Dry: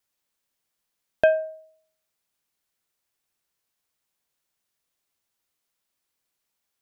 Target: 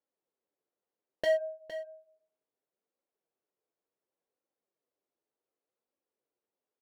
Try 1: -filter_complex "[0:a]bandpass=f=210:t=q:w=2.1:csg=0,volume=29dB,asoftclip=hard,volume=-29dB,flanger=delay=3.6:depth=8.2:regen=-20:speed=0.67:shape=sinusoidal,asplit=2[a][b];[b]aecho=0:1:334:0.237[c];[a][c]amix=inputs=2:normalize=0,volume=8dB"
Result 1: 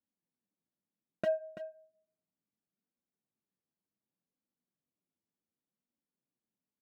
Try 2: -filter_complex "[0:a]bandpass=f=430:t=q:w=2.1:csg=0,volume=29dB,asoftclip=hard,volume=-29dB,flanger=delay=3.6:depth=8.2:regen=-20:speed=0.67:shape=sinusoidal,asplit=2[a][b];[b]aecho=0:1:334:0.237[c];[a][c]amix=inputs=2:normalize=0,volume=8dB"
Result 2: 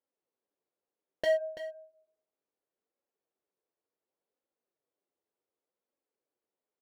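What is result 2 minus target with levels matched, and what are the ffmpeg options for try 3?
echo 0.127 s early
-filter_complex "[0:a]bandpass=f=430:t=q:w=2.1:csg=0,volume=29dB,asoftclip=hard,volume=-29dB,flanger=delay=3.6:depth=8.2:regen=-20:speed=0.67:shape=sinusoidal,asplit=2[a][b];[b]aecho=0:1:461:0.237[c];[a][c]amix=inputs=2:normalize=0,volume=8dB"

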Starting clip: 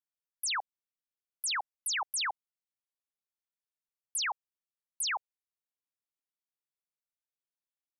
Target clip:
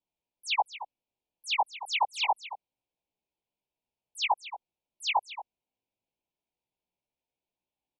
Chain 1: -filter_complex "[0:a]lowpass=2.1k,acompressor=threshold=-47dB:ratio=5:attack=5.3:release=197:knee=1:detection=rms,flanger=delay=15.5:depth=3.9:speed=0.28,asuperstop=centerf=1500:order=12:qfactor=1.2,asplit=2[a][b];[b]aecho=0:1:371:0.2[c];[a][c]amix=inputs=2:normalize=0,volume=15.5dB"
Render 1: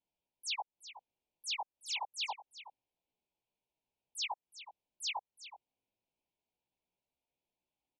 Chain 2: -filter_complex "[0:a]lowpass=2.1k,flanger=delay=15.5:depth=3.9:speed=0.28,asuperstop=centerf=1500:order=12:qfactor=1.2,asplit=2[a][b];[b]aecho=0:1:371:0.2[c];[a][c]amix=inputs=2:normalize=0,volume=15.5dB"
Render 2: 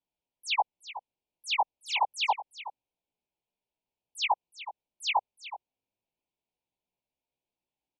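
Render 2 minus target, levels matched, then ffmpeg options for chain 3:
echo 0.146 s late
-filter_complex "[0:a]lowpass=2.1k,flanger=delay=15.5:depth=3.9:speed=0.28,asuperstop=centerf=1500:order=12:qfactor=1.2,asplit=2[a][b];[b]aecho=0:1:225:0.2[c];[a][c]amix=inputs=2:normalize=0,volume=15.5dB"

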